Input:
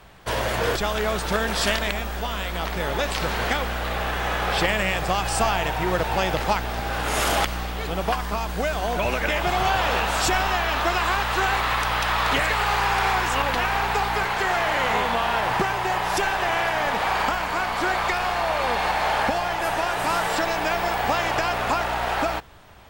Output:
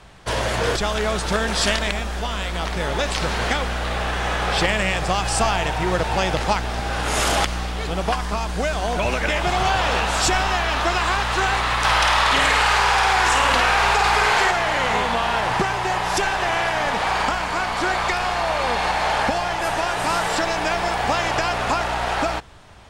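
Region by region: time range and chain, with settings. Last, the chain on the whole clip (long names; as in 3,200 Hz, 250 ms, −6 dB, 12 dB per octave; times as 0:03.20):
0:11.84–0:14.51: low-shelf EQ 400 Hz −6.5 dB + flutter between parallel walls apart 8.9 metres, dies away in 0.8 s + envelope flattener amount 100%
whole clip: Bessel low-pass filter 8,800 Hz, order 6; bass and treble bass +2 dB, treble +5 dB; level +1.5 dB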